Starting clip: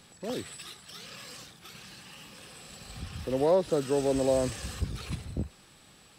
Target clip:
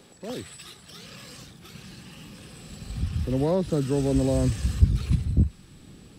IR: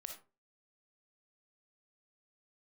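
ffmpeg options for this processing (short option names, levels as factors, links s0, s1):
-filter_complex "[0:a]acrossover=split=290|490|6800[s0][s1][s2][s3];[s1]acompressor=mode=upward:threshold=0.00447:ratio=2.5[s4];[s0][s4][s2][s3]amix=inputs=4:normalize=0,asubboost=boost=6:cutoff=240"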